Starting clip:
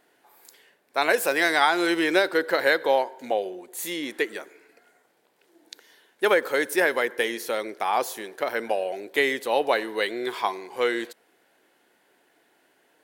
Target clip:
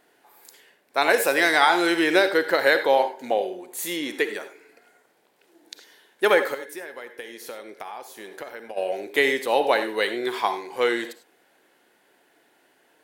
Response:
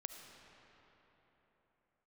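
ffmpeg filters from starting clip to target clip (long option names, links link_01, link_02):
-filter_complex "[0:a]asplit=3[link_01][link_02][link_03];[link_01]afade=type=out:start_time=6.53:duration=0.02[link_04];[link_02]acompressor=threshold=-36dB:ratio=12,afade=type=in:start_time=6.53:duration=0.02,afade=type=out:start_time=8.76:duration=0.02[link_05];[link_03]afade=type=in:start_time=8.76:duration=0.02[link_06];[link_04][link_05][link_06]amix=inputs=3:normalize=0[link_07];[1:a]atrim=start_sample=2205,afade=type=out:start_time=0.19:duration=0.01,atrim=end_sample=8820,asetrate=57330,aresample=44100[link_08];[link_07][link_08]afir=irnorm=-1:irlink=0,volume=9dB"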